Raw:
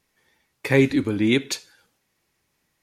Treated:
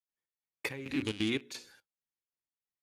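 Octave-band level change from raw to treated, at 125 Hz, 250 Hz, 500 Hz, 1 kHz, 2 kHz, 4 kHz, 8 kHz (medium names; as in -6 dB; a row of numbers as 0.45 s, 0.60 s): -17.5 dB, -14.0 dB, -18.0 dB, -13.0 dB, -12.5 dB, -8.5 dB, -13.5 dB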